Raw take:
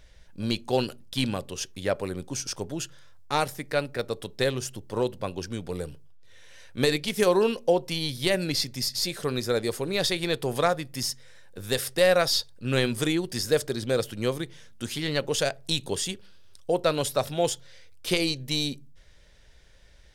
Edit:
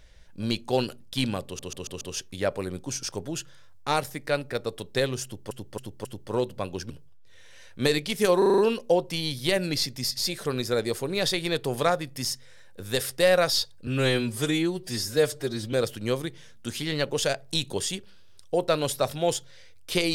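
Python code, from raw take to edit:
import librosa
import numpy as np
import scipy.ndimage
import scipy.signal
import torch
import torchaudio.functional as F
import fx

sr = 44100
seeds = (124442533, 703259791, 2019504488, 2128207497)

y = fx.edit(x, sr, fx.stutter(start_s=1.45, slice_s=0.14, count=5),
    fx.repeat(start_s=4.68, length_s=0.27, count=4),
    fx.cut(start_s=5.53, length_s=0.35),
    fx.stutter(start_s=7.36, slice_s=0.04, count=6),
    fx.stretch_span(start_s=12.65, length_s=1.24, factor=1.5), tone=tone)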